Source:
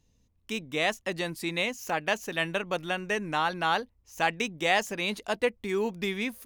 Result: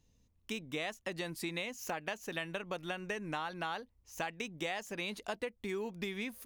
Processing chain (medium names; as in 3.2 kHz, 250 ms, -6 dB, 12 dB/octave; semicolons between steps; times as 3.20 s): compression 10:1, threshold -32 dBFS, peak gain reduction 13 dB; trim -2.5 dB